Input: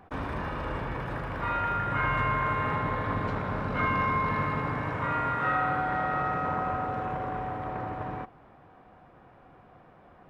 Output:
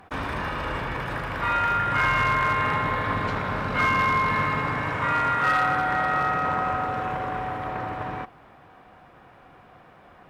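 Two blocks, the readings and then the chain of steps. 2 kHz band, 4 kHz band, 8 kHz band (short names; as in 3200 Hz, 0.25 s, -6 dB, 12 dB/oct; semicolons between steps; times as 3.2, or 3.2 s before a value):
+7.5 dB, +10.5 dB, n/a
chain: tilt shelf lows -5 dB, about 1400 Hz; one-sided clip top -23.5 dBFS; gain +6.5 dB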